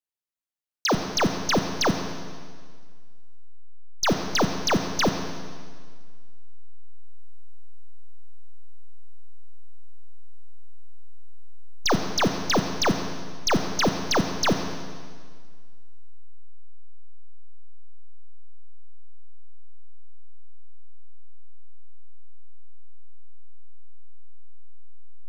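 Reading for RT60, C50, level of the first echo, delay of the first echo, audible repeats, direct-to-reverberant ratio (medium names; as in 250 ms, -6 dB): 1.8 s, 7.0 dB, no echo, no echo, no echo, 6.0 dB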